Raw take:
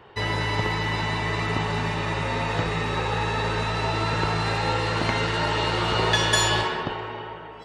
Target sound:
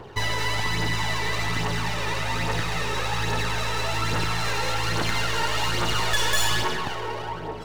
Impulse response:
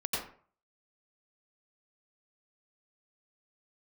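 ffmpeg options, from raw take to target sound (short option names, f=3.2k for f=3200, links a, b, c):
-filter_complex "[0:a]acrossover=split=1100[a][b];[a]acompressor=threshold=-36dB:ratio=6[c];[b]aeval=exprs='max(val(0),0)':c=same[d];[c][d]amix=inputs=2:normalize=0,aphaser=in_gain=1:out_gain=1:delay=2.3:decay=0.45:speed=1.2:type=triangular,asoftclip=type=tanh:threshold=-20dB,volume=6.5dB"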